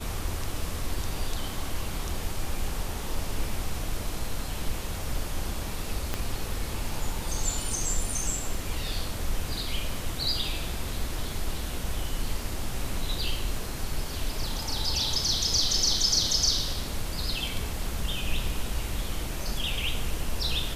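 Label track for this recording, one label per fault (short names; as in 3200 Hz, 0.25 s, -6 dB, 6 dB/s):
6.140000	6.140000	pop -13 dBFS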